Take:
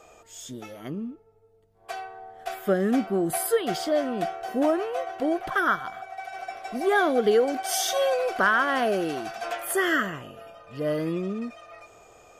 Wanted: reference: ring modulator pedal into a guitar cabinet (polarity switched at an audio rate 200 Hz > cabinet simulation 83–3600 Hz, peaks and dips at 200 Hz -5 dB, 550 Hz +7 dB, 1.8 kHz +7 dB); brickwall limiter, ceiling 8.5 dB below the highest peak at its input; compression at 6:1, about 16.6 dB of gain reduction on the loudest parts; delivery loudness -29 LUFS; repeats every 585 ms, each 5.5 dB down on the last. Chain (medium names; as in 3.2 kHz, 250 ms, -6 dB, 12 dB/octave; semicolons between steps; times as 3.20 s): compression 6:1, threshold -36 dBFS; peak limiter -33.5 dBFS; feedback delay 585 ms, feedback 53%, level -5.5 dB; polarity switched at an audio rate 200 Hz; cabinet simulation 83–3600 Hz, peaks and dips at 200 Hz -5 dB, 550 Hz +7 dB, 1.8 kHz +7 dB; trim +9.5 dB